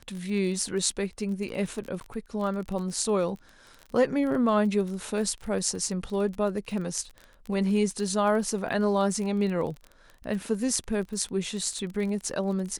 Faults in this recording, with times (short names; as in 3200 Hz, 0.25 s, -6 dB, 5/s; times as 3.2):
crackle 25/s -33 dBFS
2–2.01 gap 9.2 ms